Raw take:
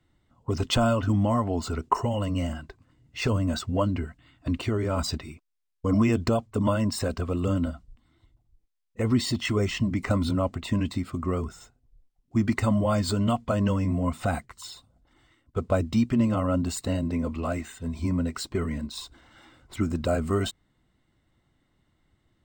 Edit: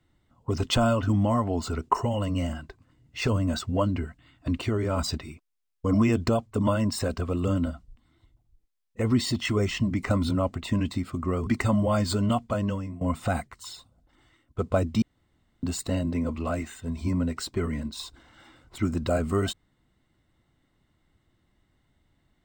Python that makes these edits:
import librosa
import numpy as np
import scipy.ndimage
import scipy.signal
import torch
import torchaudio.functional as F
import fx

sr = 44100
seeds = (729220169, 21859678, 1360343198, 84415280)

y = fx.edit(x, sr, fx.cut(start_s=11.47, length_s=0.98),
    fx.fade_out_to(start_s=13.17, length_s=0.82, curve='qsin', floor_db=-18.5),
    fx.room_tone_fill(start_s=16.0, length_s=0.61), tone=tone)